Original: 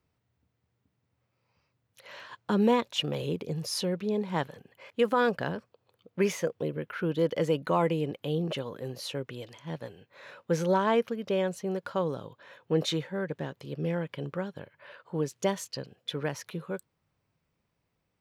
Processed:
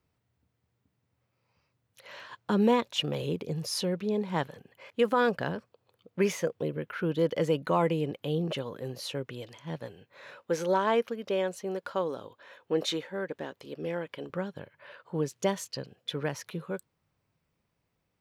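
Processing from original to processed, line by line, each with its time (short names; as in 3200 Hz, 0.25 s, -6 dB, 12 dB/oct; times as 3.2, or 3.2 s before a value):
10.37–14.3 bell 140 Hz -14.5 dB 0.76 oct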